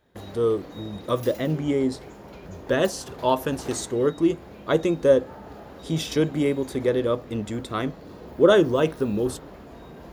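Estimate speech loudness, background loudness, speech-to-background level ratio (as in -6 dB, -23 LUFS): -24.0 LUFS, -42.0 LUFS, 18.0 dB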